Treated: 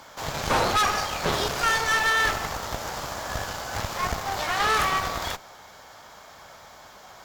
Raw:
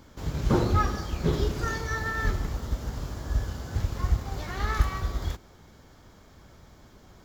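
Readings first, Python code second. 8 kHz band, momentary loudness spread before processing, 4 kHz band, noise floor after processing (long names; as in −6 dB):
+12.0 dB, 9 LU, +13.0 dB, −48 dBFS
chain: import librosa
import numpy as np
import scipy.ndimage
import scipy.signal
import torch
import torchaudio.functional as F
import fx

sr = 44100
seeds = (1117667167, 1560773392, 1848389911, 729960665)

p1 = fx.octave_divider(x, sr, octaves=2, level_db=2.0)
p2 = fx.highpass(p1, sr, hz=210.0, slope=6)
p3 = fx.low_shelf_res(p2, sr, hz=480.0, db=-12.0, q=1.5)
p4 = fx.fold_sine(p3, sr, drive_db=12, ceiling_db=-14.5)
p5 = p3 + F.gain(torch.from_numpy(p4), -8.0).numpy()
y = fx.cheby_harmonics(p5, sr, harmonics=(2, 6), levels_db=(-9, -21), full_scale_db=-14.0)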